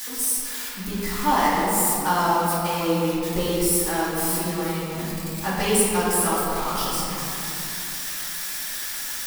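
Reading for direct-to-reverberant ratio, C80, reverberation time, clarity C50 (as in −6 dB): −9.5 dB, −1.0 dB, 3.0 s, −2.5 dB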